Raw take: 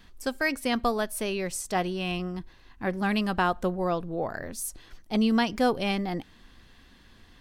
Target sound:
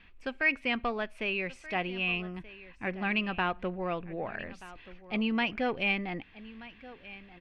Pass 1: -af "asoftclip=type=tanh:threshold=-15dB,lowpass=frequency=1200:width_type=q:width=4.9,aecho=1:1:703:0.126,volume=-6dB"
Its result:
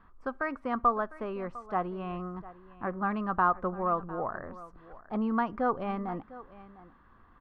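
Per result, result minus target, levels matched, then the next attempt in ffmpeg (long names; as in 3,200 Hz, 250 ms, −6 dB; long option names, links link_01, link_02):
echo 527 ms early; 2,000 Hz band −8.5 dB
-af "asoftclip=type=tanh:threshold=-15dB,lowpass=frequency=1200:width_type=q:width=4.9,aecho=1:1:1230:0.126,volume=-6dB"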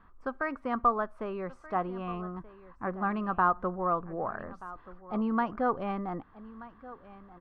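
2,000 Hz band −8.5 dB
-af "asoftclip=type=tanh:threshold=-15dB,lowpass=frequency=2500:width_type=q:width=4.9,aecho=1:1:1230:0.126,volume=-6dB"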